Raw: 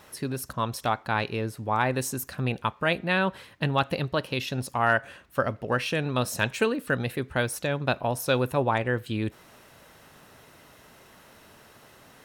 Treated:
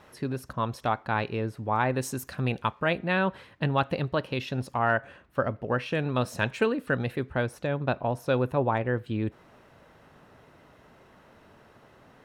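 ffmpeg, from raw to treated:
-af "asetnsamples=n=441:p=0,asendcmd='2.03 lowpass f 5500;2.8 lowpass f 2300;4.79 lowpass f 1400;5.92 lowpass f 2400;7.3 lowpass f 1300',lowpass=f=2100:p=1"

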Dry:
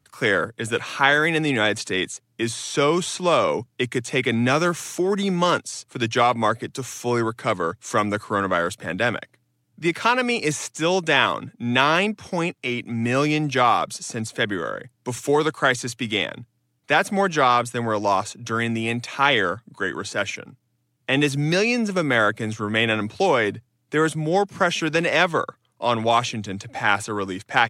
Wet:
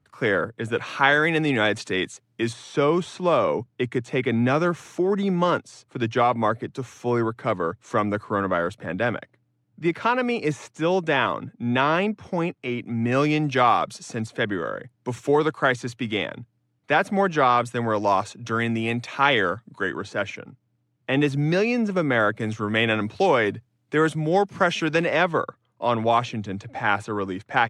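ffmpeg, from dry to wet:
-af "asetnsamples=n=441:p=0,asendcmd='0.81 lowpass f 3100;2.53 lowpass f 1300;13.12 lowpass f 3000;14.26 lowpass f 1900;17.58 lowpass f 3200;19.92 lowpass f 1600;22.4 lowpass f 3500;25.04 lowpass f 1600',lowpass=f=1500:p=1"

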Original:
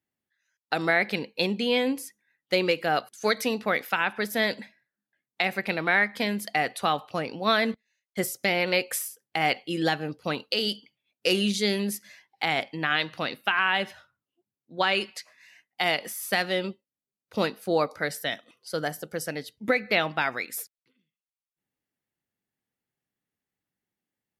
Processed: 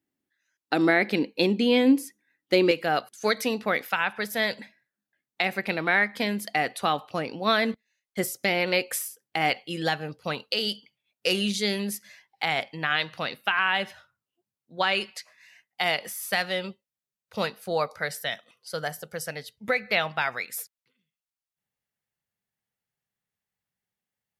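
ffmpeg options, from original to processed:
-af "asetnsamples=n=441:p=0,asendcmd='2.71 equalizer g 0.5;3.86 equalizer g -9.5;4.61 equalizer g 1;9.5 equalizer g -6.5;16.09 equalizer g -12.5',equalizer=f=300:t=o:w=0.69:g=12"

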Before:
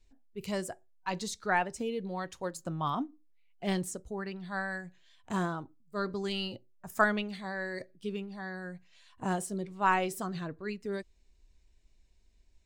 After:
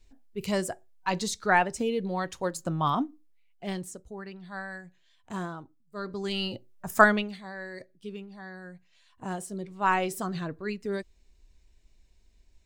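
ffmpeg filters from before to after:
-af "volume=17.8,afade=t=out:st=2.93:d=0.79:silence=0.354813,afade=t=in:st=6.02:d=0.92:silence=0.251189,afade=t=out:st=6.94:d=0.46:silence=0.251189,afade=t=in:st=9.3:d=1.01:silence=0.446684"

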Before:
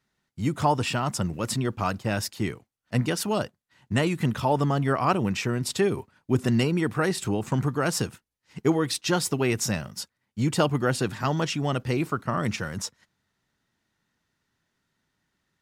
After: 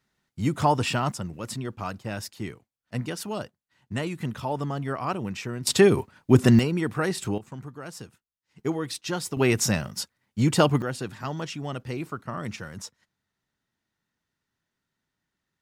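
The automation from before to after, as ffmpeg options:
-af "asetnsamples=n=441:p=0,asendcmd='1.12 volume volume -6dB;5.67 volume volume 6.5dB;6.59 volume volume -1.5dB;7.38 volume volume -14dB;8.59 volume volume -5.5dB;9.37 volume volume 3dB;10.82 volume volume -6.5dB',volume=1.12"

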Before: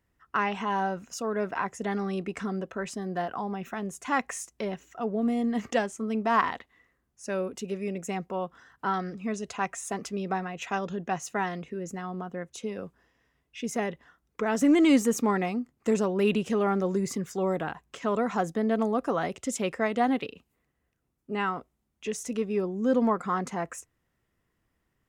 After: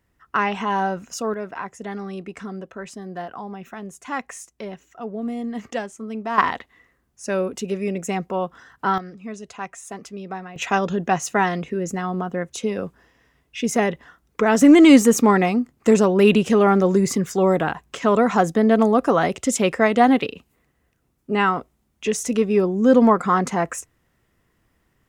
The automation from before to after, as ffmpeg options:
-af "asetnsamples=n=441:p=0,asendcmd='1.34 volume volume -1dB;6.38 volume volume 7.5dB;8.98 volume volume -2dB;10.56 volume volume 10dB',volume=2"

